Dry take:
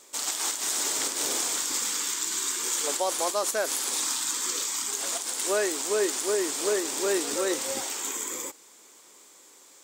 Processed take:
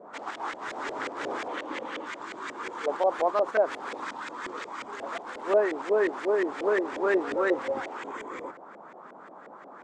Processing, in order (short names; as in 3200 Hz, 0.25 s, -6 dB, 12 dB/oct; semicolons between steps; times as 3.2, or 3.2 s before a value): band noise 190–1400 Hz -51 dBFS; 1.48–2.06 speaker cabinet 120–9100 Hz, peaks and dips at 310 Hz +6 dB, 550 Hz +8 dB, 1400 Hz -4 dB, 3000 Hz +5 dB, 5100 Hz -6 dB, 7400 Hz -6 dB; LFO low-pass saw up 5.6 Hz 520–2200 Hz